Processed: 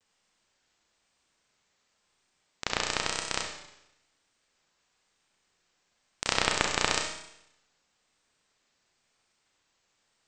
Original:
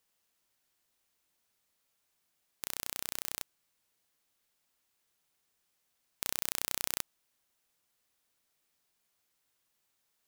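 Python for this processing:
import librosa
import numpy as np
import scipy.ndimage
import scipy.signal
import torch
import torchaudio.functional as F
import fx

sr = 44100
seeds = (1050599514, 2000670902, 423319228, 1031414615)

y = fx.halfwave_hold(x, sr)
y = scipy.signal.sosfilt(scipy.signal.cheby1(8, 1.0, 8300.0, 'lowpass', fs=sr, output='sos'), y)
y = fx.rev_schroeder(y, sr, rt60_s=0.84, comb_ms=30, drr_db=2.5)
y = fx.vibrato(y, sr, rate_hz=1.0, depth_cents=73.0)
y = y * 10.0 ** (2.0 / 20.0)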